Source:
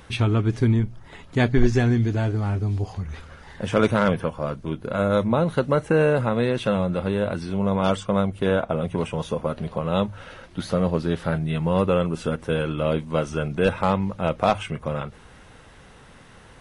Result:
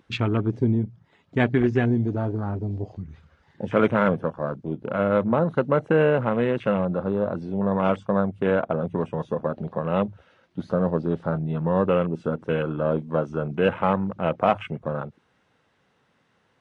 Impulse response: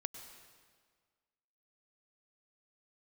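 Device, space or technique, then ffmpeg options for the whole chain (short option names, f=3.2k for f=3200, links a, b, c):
over-cleaned archive recording: -af "highpass=130,lowpass=6k,afwtdn=0.0224"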